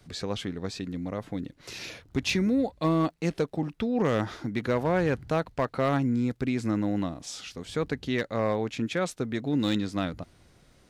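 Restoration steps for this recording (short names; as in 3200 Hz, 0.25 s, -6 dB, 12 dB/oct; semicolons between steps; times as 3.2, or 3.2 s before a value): clip repair -18 dBFS; de-click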